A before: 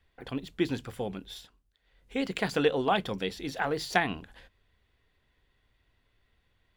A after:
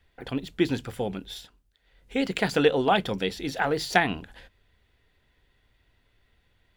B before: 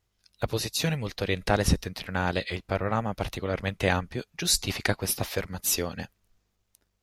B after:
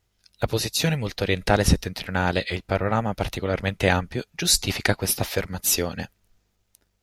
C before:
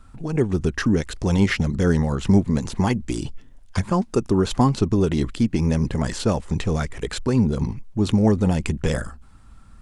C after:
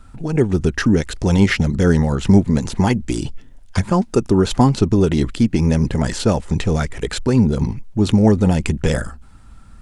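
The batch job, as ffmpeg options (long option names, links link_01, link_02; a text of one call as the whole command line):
ffmpeg -i in.wav -af "bandreject=frequency=1100:width=12,volume=4.5dB" out.wav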